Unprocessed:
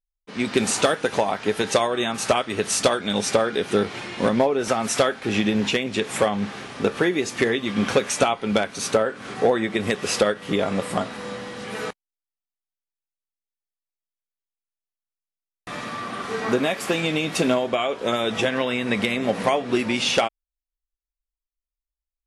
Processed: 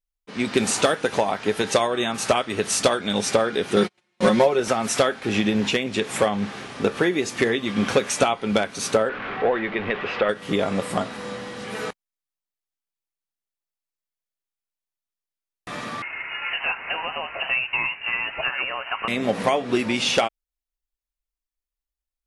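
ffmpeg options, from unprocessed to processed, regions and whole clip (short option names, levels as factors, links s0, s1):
-filter_complex "[0:a]asettb=1/sr,asplit=3[s0][s1][s2];[s0]atrim=end=3.764[s3];[s1]atrim=start=3.76:end=4.6,asetpts=PTS-STARTPTS,afade=t=in:d=0.004:c=qsin,afade=t=out:st=0.836:d=0.004:c=qsin,highshelf=f=2600:g=5.5,agate=range=0.00794:threshold=0.0447:ratio=16:release=100:detection=peak,aecho=1:1:5.5:0.75,atrim=end_sample=37044[s4];[s2]atrim=start=4.596[s5];[s3][s4]acrossfade=d=0.004:c1=hsin:c2=qsin[s6];[s6][s5]acrossfade=d=0.004:c1=qsin:c2=hsin,asettb=1/sr,asplit=3[s7][s8][s9];[s7]atrim=end=9.094[s10];[s8]atrim=start=9.09:end=10.29,asetpts=PTS-STARTPTS,afade=t=in:d=0.004:c=qsin,afade=t=out:st=1.196:d=0.004:c=qsin,aeval=exprs='val(0)+0.5*0.0501*sgn(val(0))':c=same,lowpass=f=2800:w=0.5412,lowpass=f=2800:w=1.3066,equalizer=f=150:w=0.4:g=-8.5[s11];[s9]atrim=start=10.286[s12];[s10][s11]acrossfade=d=0.004:c1=hsin:c2=qsin[s13];[s13][s12]acrossfade=d=0.004:c1=qsin:c2=hsin,asettb=1/sr,asplit=3[s14][s15][s16];[s14]atrim=end=16.024[s17];[s15]atrim=start=16.02:end=19.08,asetpts=PTS-STARTPTS,afade=t=in:d=0.004:c=qsin,afade=t=out:st=3.056:d=0.004:c=qsin,highpass=f=550:w=0.5412,highpass=f=550:w=1.3066,lowpass=f=2800:t=q:w=0.5098,lowpass=f=2800:t=q:w=0.6013,lowpass=f=2800:t=q:w=0.9,lowpass=f=2800:t=q:w=2.563,afreqshift=-3300[s18];[s16]atrim=start=19.076[s19];[s17][s18]acrossfade=d=0.004:c1=hsin:c2=qsin[s20];[s20][s19]acrossfade=d=0.004:c1=qsin:c2=hsin"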